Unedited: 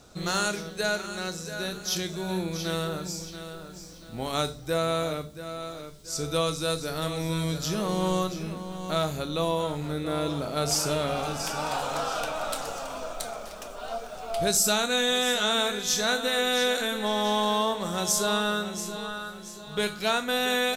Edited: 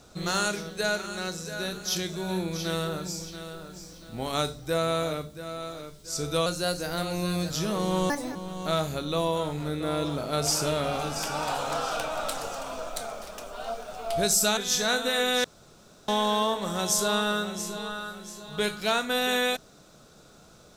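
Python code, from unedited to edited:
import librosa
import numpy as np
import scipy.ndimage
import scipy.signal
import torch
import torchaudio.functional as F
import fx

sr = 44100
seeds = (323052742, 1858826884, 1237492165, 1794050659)

y = fx.edit(x, sr, fx.speed_span(start_s=6.46, length_s=1.14, speed=1.09),
    fx.speed_span(start_s=8.19, length_s=0.4, speed=1.56),
    fx.cut(start_s=14.81, length_s=0.95),
    fx.room_tone_fill(start_s=16.63, length_s=0.64), tone=tone)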